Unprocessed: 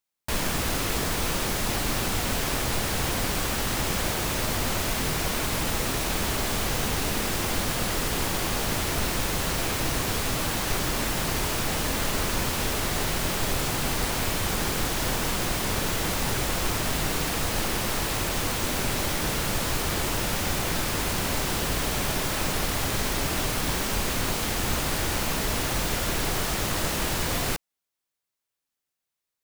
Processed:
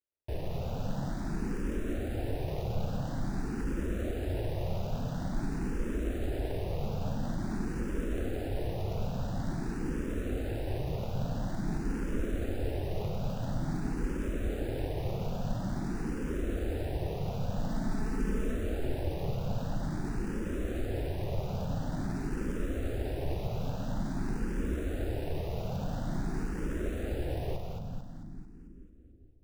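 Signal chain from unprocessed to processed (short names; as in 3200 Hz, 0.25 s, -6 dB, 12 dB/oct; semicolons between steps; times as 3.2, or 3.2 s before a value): median filter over 41 samples; 17.69–18.55 comb 4.6 ms, depth 76%; split-band echo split 320 Hz, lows 0.433 s, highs 0.222 s, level -4 dB; endless phaser +0.48 Hz; gain -1.5 dB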